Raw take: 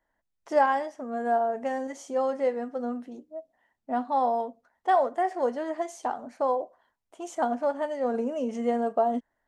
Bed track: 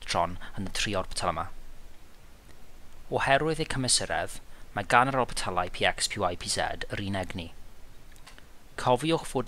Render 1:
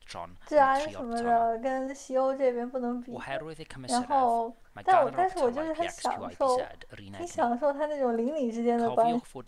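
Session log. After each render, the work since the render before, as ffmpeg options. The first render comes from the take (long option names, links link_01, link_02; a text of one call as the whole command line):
ffmpeg -i in.wav -i bed.wav -filter_complex "[1:a]volume=-13dB[link_01];[0:a][link_01]amix=inputs=2:normalize=0" out.wav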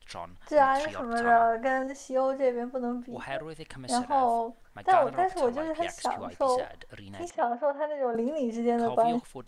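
ffmpeg -i in.wav -filter_complex "[0:a]asettb=1/sr,asplit=3[link_01][link_02][link_03];[link_01]atrim=end=0.844[link_04];[link_02]atrim=start=0.84:end=1.83,asetpts=PTS-STARTPTS,afade=type=in:duration=0.004:curve=qsin,afade=type=out:start_time=0.986:duration=0.004:curve=qsin,equalizer=frequency=1500:width_type=o:width=1.3:gain=11[link_05];[link_03]atrim=start=1.826[link_06];[link_04][link_05]acrossfade=duration=0.004:curve1=hsin:curve2=qsin[link_07];[link_07][link_06]acrossfade=duration=0.004:curve1=qsin:curve2=hsin,asettb=1/sr,asplit=3[link_08][link_09][link_10];[link_08]atrim=end=7.304[link_11];[link_09]atrim=start=7.3:end=8.15,asetpts=PTS-STARTPTS,afade=type=in:duration=0.004:curve=qsin,afade=type=out:start_time=0.846:duration=0.004:curve=qsin,highpass=360,lowpass=2800[link_12];[link_10]atrim=start=8.146[link_13];[link_11][link_12]acrossfade=duration=0.004:curve1=hsin:curve2=qsin[link_14];[link_14][link_13]acrossfade=duration=0.004:curve1=qsin:curve2=hsin" out.wav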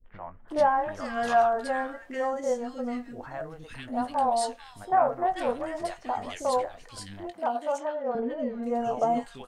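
ffmpeg -i in.wav -filter_complex "[0:a]asplit=2[link_01][link_02];[link_02]adelay=20,volume=-11dB[link_03];[link_01][link_03]amix=inputs=2:normalize=0,acrossover=split=390|1800[link_04][link_05][link_06];[link_05]adelay=40[link_07];[link_06]adelay=480[link_08];[link_04][link_07][link_08]amix=inputs=3:normalize=0" out.wav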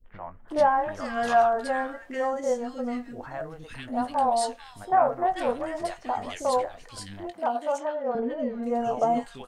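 ffmpeg -i in.wav -af "volume=1.5dB" out.wav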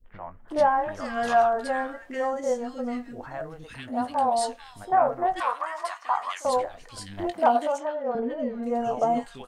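ffmpeg -i in.wav -filter_complex "[0:a]asettb=1/sr,asplit=3[link_01][link_02][link_03];[link_01]atrim=end=3.714[link_04];[link_02]atrim=start=3.71:end=4.39,asetpts=PTS-STARTPTS,afade=type=in:duration=0.004:curve=qsin,afade=type=out:start_time=0.676:duration=0.004:curve=qsin,highpass=42[link_05];[link_03]atrim=start=4.386[link_06];[link_04][link_05]acrossfade=duration=0.004:curve1=hsin:curve2=qsin[link_07];[link_07][link_06]acrossfade=duration=0.004:curve1=qsin:curve2=hsin,asettb=1/sr,asplit=3[link_08][link_09][link_10];[link_08]atrim=end=5.404[link_11];[link_09]atrim=start=5.4:end=6.45,asetpts=PTS-STARTPTS,afade=type=in:duration=0.004:curve=qsin,afade=type=out:start_time=1.046:duration=0.004:curve=qsin,highpass=frequency=1100:width_type=q:width=5.4[link_12];[link_10]atrim=start=6.446[link_13];[link_11][link_12]acrossfade=duration=0.004:curve1=hsin:curve2=qsin[link_14];[link_14][link_13]acrossfade=duration=0.004:curve1=qsin:curve2=hsin,asplit=3[link_15][link_16][link_17];[link_15]afade=type=out:start_time=7.17:duration=0.02[link_18];[link_16]acontrast=88,afade=type=in:start_time=7.17:duration=0.02,afade=type=out:start_time=7.66:duration=0.02[link_19];[link_17]afade=type=in:start_time=7.66:duration=0.02[link_20];[link_18][link_19][link_20]amix=inputs=3:normalize=0" out.wav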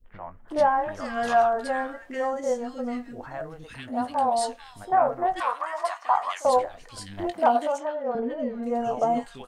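ffmpeg -i in.wav -filter_complex "[0:a]asettb=1/sr,asplit=3[link_01][link_02][link_03];[link_01]atrim=end=5.734[link_04];[link_02]atrim=start=5.73:end=6.59,asetpts=PTS-STARTPTS,afade=type=in:duration=0.004:curve=qsin,afade=type=out:start_time=0.856:duration=0.004:curve=qsin,equalizer=frequency=680:width=1.5:gain=6[link_05];[link_03]atrim=start=6.586[link_06];[link_04][link_05]acrossfade=duration=0.004:curve1=hsin:curve2=qsin[link_07];[link_07][link_06]acrossfade=duration=0.004:curve1=qsin:curve2=hsin" out.wav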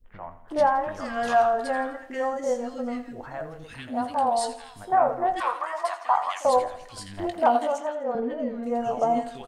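ffmpeg -i in.wav -af "aecho=1:1:84|168|252|336|420:0.2|0.0958|0.046|0.0221|0.0106" out.wav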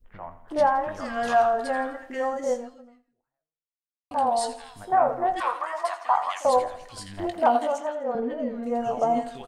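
ffmpeg -i in.wav -filter_complex "[0:a]asplit=2[link_01][link_02];[link_01]atrim=end=4.11,asetpts=PTS-STARTPTS,afade=type=out:start_time=2.54:duration=1.57:curve=exp[link_03];[link_02]atrim=start=4.11,asetpts=PTS-STARTPTS,afade=type=in:duration=0.004:curve=hsin[link_04];[link_03][link_04]concat=n=2:v=0:a=1" out.wav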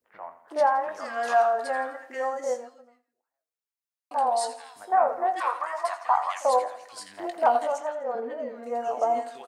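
ffmpeg -i in.wav -af "highpass=470,equalizer=frequency=3200:width_type=o:width=0.48:gain=-5.5" out.wav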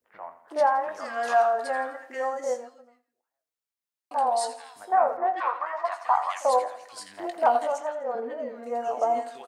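ffmpeg -i in.wav -filter_complex "[0:a]asettb=1/sr,asplit=3[link_01][link_02][link_03];[link_01]atrim=end=5.174[link_04];[link_02]atrim=start=5.17:end=5.92,asetpts=PTS-STARTPTS,afade=type=in:duration=0.004:curve=qsin,afade=type=out:start_time=0.746:duration=0.004:curve=qsin,lowpass=3000[link_05];[link_03]atrim=start=5.916[link_06];[link_04][link_05]acrossfade=duration=0.004:curve1=hsin:curve2=qsin[link_07];[link_07][link_06]acrossfade=duration=0.004:curve1=qsin:curve2=hsin" out.wav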